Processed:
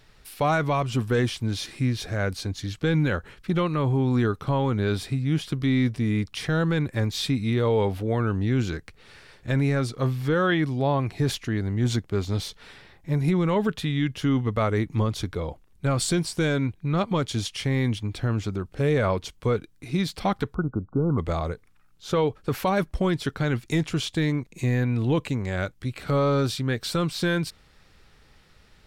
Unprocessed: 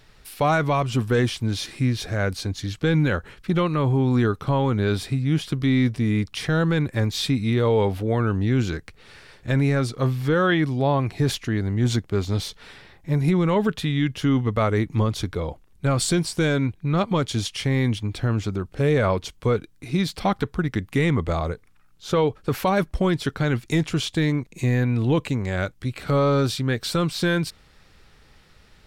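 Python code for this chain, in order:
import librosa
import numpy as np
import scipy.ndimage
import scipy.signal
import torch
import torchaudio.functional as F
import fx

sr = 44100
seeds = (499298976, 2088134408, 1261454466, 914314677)

y = fx.brickwall_lowpass(x, sr, high_hz=1500.0, at=(20.53, 21.17), fade=0.02)
y = y * librosa.db_to_amplitude(-2.5)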